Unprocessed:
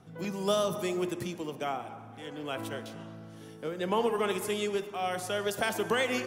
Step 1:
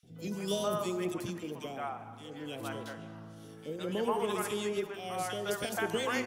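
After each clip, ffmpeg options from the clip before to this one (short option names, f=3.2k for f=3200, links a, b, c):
-filter_complex "[0:a]acrossover=split=600|2400[a][b][c];[a]adelay=30[d];[b]adelay=160[e];[d][e][c]amix=inputs=3:normalize=0,volume=-1.5dB"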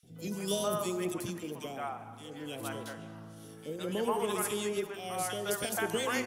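-af "equalizer=f=11k:t=o:w=1.1:g=8"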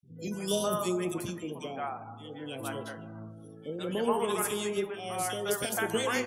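-af "afftdn=nr=26:nf=-52,flanger=delay=7.1:depth=6:regen=72:speed=0.36:shape=triangular,volume=6.5dB"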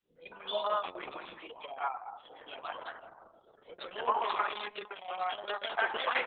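-af "highpass=f=850:t=q:w=1.7" -ar 48000 -c:a libopus -b:a 6k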